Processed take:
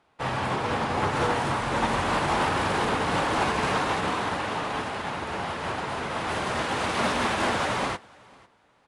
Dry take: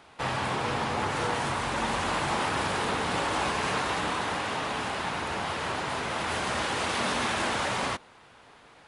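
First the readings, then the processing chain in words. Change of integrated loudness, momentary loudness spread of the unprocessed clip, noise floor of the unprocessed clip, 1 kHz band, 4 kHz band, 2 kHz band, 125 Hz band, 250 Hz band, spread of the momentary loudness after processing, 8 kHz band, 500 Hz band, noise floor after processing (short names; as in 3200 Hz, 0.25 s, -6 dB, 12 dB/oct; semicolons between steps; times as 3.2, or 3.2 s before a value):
+2.5 dB, 3 LU, -55 dBFS, +3.0 dB, 0.0 dB, +1.5 dB, +4.0 dB, +4.0 dB, 6 LU, -1.5 dB, +3.5 dB, -63 dBFS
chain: high shelf 2300 Hz -6 dB; flange 0.63 Hz, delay 5.7 ms, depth 6.4 ms, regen -86%; in parallel at -10 dB: sine folder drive 8 dB, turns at -21 dBFS; on the sum: feedback echo 0.495 s, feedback 19%, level -10 dB; upward expander 2.5:1, over -39 dBFS; gain +5.5 dB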